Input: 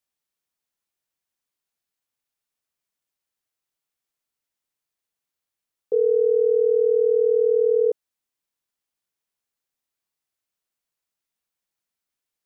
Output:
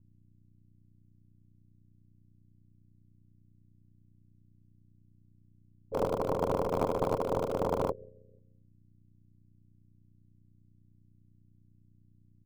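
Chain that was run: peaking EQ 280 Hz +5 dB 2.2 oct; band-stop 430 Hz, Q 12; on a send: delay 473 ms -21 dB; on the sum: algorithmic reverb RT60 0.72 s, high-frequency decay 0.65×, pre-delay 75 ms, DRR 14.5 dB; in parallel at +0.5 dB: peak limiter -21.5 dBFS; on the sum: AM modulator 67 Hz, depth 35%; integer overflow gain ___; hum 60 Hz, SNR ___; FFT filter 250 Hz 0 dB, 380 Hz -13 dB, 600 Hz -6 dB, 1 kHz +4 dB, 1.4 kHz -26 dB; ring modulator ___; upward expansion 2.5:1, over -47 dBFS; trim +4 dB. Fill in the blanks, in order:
13 dB, 14 dB, 45 Hz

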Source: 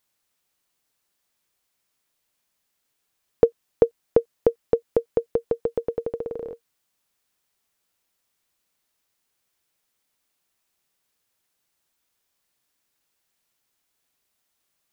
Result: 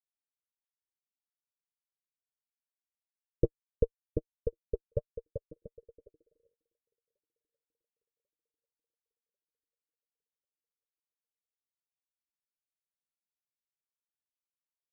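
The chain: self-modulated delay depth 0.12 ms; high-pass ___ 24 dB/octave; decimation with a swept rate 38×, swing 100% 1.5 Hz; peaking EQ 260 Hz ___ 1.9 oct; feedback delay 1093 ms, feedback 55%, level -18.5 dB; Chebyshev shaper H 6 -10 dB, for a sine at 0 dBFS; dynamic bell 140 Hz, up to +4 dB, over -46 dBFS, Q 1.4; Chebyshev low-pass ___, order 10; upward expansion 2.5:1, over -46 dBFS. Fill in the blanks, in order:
110 Hz, -14.5 dB, 600 Hz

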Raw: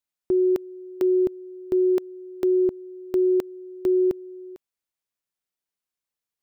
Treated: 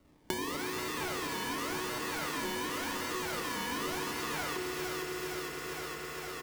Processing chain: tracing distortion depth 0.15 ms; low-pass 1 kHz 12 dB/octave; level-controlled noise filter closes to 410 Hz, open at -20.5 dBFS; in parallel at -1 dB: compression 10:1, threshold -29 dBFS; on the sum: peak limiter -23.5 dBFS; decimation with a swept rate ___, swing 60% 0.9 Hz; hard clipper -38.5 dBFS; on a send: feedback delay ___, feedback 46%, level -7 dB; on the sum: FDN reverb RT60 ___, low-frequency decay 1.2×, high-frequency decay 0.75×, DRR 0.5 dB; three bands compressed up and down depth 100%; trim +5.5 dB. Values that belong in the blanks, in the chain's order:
26×, 461 ms, 3.1 s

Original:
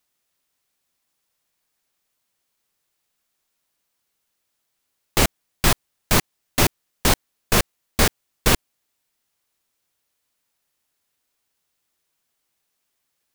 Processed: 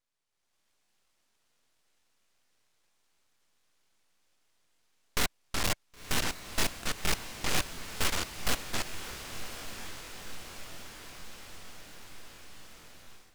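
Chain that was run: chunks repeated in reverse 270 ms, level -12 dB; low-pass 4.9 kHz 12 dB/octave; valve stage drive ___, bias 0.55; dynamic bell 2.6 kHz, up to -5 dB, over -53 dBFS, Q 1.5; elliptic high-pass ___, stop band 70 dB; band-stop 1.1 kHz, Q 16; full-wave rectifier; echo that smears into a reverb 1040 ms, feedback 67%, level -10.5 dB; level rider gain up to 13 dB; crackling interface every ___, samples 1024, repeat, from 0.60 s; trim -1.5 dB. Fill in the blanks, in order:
31 dB, 490 Hz, 0.23 s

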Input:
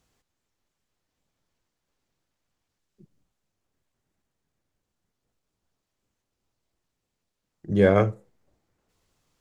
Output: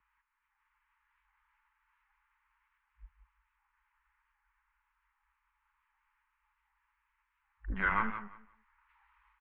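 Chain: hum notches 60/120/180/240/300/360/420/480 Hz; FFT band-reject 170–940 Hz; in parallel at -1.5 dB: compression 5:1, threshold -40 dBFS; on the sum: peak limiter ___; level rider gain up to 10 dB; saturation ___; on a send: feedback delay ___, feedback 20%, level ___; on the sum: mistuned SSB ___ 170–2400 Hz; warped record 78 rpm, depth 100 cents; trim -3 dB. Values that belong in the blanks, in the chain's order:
-18.5 dBFS, -17 dBFS, 175 ms, -10.5 dB, -110 Hz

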